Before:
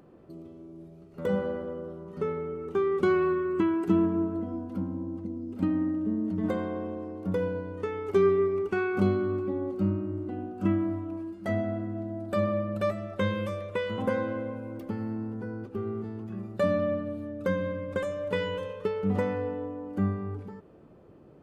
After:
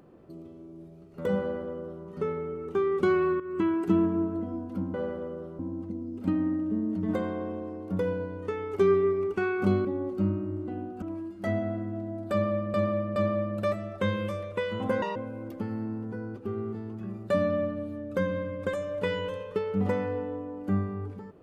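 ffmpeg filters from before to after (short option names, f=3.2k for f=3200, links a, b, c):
-filter_complex "[0:a]asplit=10[a][b][c][d][e][f][g][h][i][j];[a]atrim=end=3.4,asetpts=PTS-STARTPTS,afade=t=out:st=3.396:d=0.004:c=hsin:silence=0.223872[k];[b]atrim=start=3.4:end=4.942,asetpts=PTS-STARTPTS,afade=t=in:d=0.27:silence=0.223872[l];[c]atrim=start=1.398:end=2.052[m];[d]atrim=start=4.938:end=9.202[n];[e]atrim=start=9.458:end=10.632[o];[f]atrim=start=11.038:end=12.762[p];[g]atrim=start=12.338:end=12.762[q];[h]atrim=start=12.338:end=14.204[r];[i]atrim=start=14.2:end=14.45,asetpts=PTS-STARTPTS,asetrate=80262,aresample=44100[s];[j]atrim=start=14.446[t];[k][l]concat=n=2:v=0:a=1[u];[u][m]acrossfade=d=0.004:c1=hsin:c2=hsin[v];[v][n]acrossfade=d=0.004:c1=hsin:c2=hsin[w];[w][o]acrossfade=d=0.004:c1=hsin:c2=hsin[x];[x][p]acrossfade=d=0.004:c1=hsin:c2=hsin[y];[y][q]acrossfade=d=0.004:c1=hsin:c2=hsin[z];[z][r]acrossfade=d=0.004:c1=hsin:c2=hsin[aa];[aa][s]acrossfade=d=0.004:c1=hsin:c2=hsin[ab];[ab][t]acrossfade=d=0.004:c1=hsin:c2=hsin"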